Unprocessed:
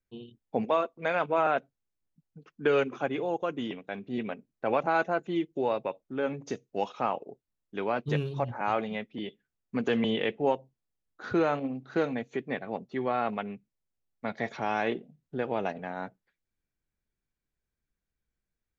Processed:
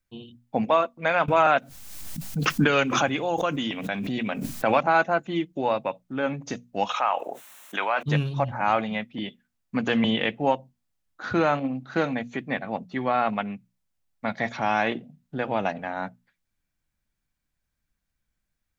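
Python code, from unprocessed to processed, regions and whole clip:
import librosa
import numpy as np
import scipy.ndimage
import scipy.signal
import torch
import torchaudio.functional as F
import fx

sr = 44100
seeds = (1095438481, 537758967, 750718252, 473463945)

y = fx.chain(x, sr, fx.high_shelf(hz=3400.0, db=9.0),
    fx.pre_swell(db_per_s=33.0), at=(1.28, 4.81))
y = fx.chain(y, sr, fx.highpass(hz=760.0, slope=12),
    fx.peak_eq(hz=4800.0, db=-12.5, octaves=0.35),
    fx.env_flatten(amount_pct=70), at=(6.89, 8.03))
y = fx.peak_eq(y, sr, hz=410.0, db=-11.0, octaves=0.52)
y = fx.hum_notches(y, sr, base_hz=60, count=4)
y = y * librosa.db_to_amplitude(7.0)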